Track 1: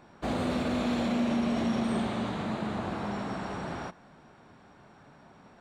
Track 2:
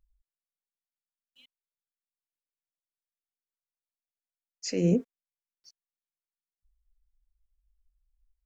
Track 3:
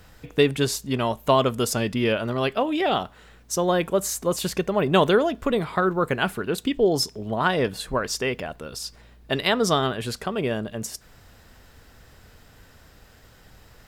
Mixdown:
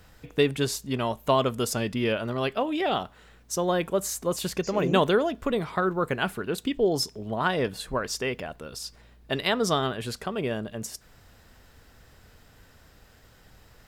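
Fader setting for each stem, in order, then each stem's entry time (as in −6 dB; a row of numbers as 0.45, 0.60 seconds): muted, −6.5 dB, −3.5 dB; muted, 0.00 s, 0.00 s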